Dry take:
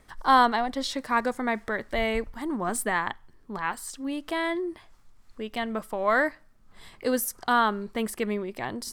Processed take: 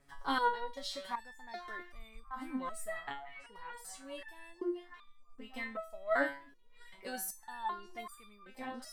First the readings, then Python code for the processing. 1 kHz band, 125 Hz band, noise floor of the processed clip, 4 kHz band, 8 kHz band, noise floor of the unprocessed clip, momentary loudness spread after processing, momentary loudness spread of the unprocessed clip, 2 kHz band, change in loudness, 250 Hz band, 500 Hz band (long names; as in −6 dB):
−13.0 dB, below −20 dB, −59 dBFS, −11.0 dB, −11.5 dB, −57 dBFS, 19 LU, 11 LU, −11.5 dB, −12.0 dB, −14.0 dB, −12.0 dB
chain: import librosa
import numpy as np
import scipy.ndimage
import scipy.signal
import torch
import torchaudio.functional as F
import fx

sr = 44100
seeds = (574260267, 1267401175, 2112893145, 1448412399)

y = fx.echo_stepped(x, sr, ms=655, hz=3400.0, octaves=-0.7, feedback_pct=70, wet_db=-10)
y = fx.resonator_held(y, sr, hz=2.6, low_hz=140.0, high_hz=1200.0)
y = y * librosa.db_to_amplitude(3.0)